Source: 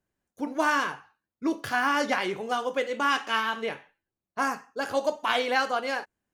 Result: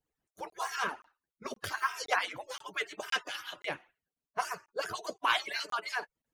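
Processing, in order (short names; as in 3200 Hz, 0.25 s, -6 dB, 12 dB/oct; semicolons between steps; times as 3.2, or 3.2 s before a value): median-filter separation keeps percussive; crackling interface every 0.52 s, samples 1024, zero, from 0.5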